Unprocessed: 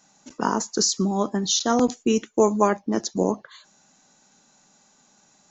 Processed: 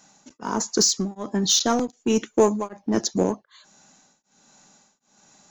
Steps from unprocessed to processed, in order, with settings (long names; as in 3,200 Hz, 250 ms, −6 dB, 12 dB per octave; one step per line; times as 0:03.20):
in parallel at −4 dB: gain into a clipping stage and back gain 21.5 dB
on the sum: tremolo along a rectified sine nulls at 1.3 Hz